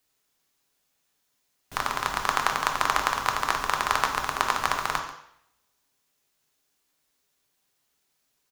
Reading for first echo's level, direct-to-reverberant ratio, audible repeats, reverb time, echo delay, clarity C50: −16.5 dB, 2.5 dB, 1, 0.70 s, 138 ms, 7.0 dB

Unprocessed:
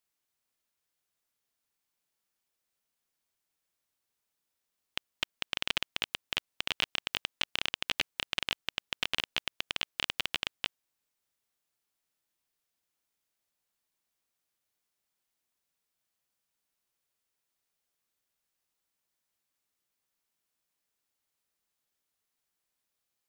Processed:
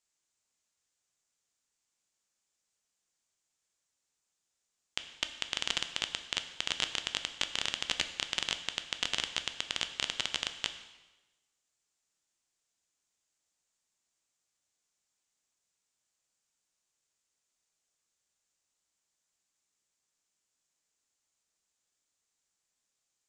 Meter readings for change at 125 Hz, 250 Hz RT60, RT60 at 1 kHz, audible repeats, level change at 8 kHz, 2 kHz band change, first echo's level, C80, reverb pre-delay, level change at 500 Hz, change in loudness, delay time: −1.0 dB, 1.2 s, 1.1 s, no echo audible, +7.0 dB, −2.0 dB, no echo audible, 12.5 dB, 5 ms, −1.0 dB, 0.0 dB, no echo audible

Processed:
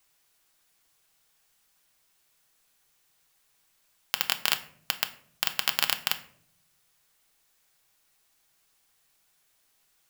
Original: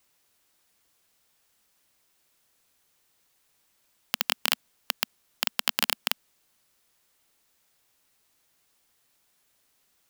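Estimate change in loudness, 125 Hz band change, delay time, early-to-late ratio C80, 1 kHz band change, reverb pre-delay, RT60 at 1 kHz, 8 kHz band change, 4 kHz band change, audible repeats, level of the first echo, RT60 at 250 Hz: +0.5 dB, 0.0 dB, no echo audible, 18.5 dB, 0.0 dB, 3 ms, 0.50 s, +0.5 dB, +0.5 dB, no echo audible, no echo audible, 1.1 s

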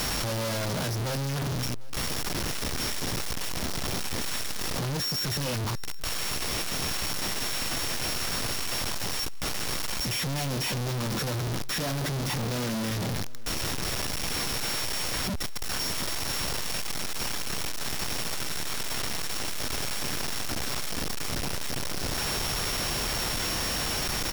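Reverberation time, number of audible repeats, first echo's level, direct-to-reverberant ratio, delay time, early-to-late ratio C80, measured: no reverb audible, 1, −22.5 dB, no reverb audible, 746 ms, no reverb audible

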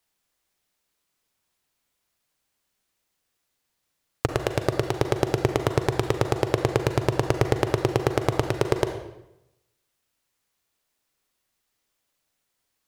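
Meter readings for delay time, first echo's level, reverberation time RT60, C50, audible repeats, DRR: no echo audible, no echo audible, 0.90 s, 7.5 dB, no echo audible, 6.5 dB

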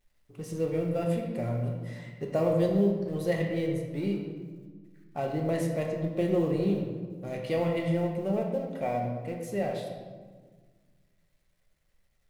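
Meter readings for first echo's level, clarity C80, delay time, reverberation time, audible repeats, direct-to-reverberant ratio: no echo audible, 5.5 dB, no echo audible, 1.6 s, no echo audible, 1.0 dB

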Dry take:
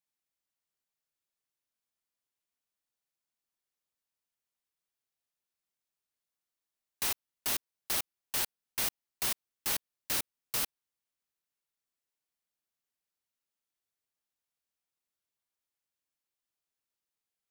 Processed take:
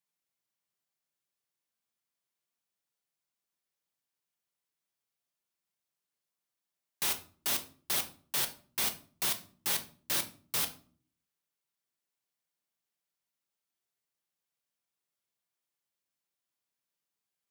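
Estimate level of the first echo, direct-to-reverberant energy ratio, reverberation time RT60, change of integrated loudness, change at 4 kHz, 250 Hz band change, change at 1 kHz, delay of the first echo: no echo audible, 6.0 dB, 0.45 s, +1.0 dB, +2.0 dB, +1.5 dB, +1.0 dB, no echo audible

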